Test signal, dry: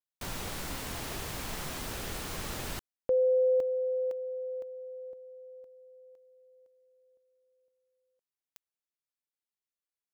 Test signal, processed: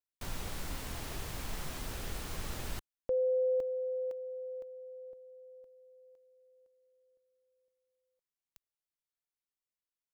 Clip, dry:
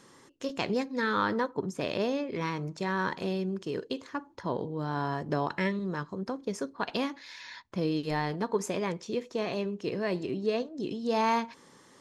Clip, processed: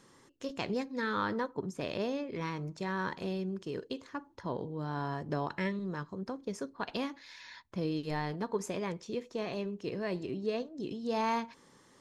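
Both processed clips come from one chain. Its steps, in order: low shelf 77 Hz +9.5 dB; gain -5 dB

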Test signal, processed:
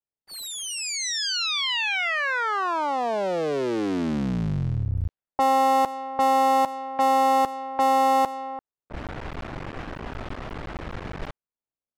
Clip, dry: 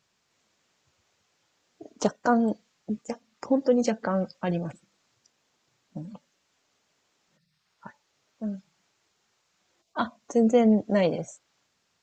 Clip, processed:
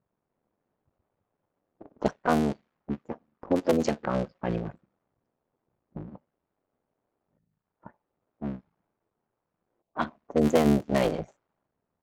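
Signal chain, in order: cycle switcher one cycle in 3, muted; low-pass opened by the level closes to 750 Hz, open at -18.5 dBFS

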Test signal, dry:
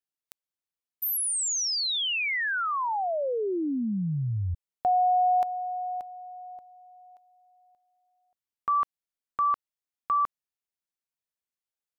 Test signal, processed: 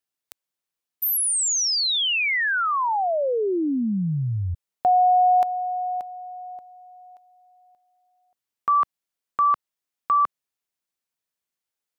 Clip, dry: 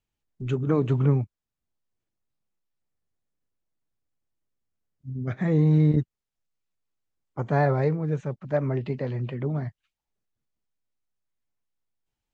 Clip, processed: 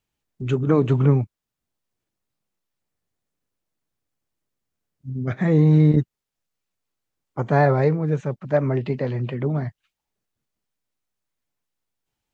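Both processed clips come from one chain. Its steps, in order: low shelf 66 Hz -8 dB; gain +5.5 dB

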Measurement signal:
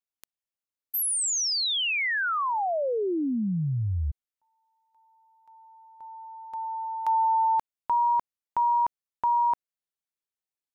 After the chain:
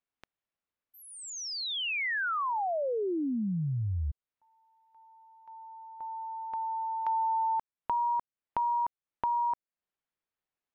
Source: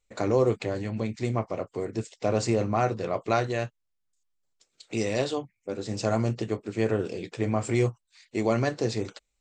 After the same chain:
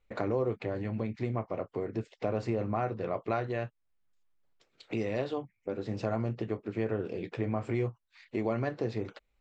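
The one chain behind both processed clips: LPF 2500 Hz 12 dB/oct; compressor 2:1, threshold -43 dBFS; gain +5.5 dB

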